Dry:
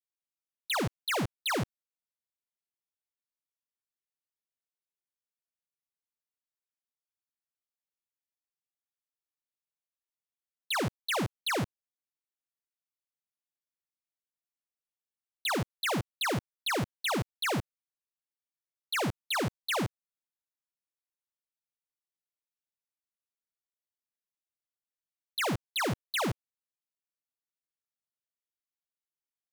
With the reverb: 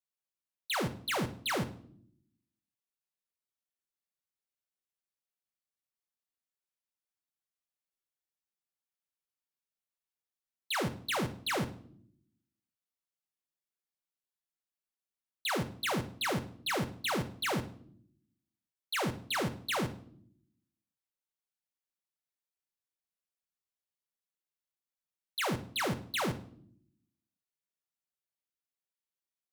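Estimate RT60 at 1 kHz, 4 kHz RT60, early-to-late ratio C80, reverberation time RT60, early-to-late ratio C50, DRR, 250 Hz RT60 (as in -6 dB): 0.50 s, 0.50 s, 18.0 dB, 0.60 s, 14.5 dB, 6.5 dB, 1.1 s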